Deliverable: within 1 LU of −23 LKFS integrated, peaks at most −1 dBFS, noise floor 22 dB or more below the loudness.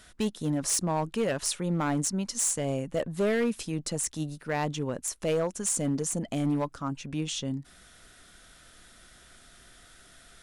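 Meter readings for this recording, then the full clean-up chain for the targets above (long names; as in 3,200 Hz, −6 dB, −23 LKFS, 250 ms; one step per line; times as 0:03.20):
share of clipped samples 1.5%; peaks flattened at −21.5 dBFS; integrated loudness −29.5 LKFS; sample peak −21.5 dBFS; target loudness −23.0 LKFS
→ clipped peaks rebuilt −21.5 dBFS
level +6.5 dB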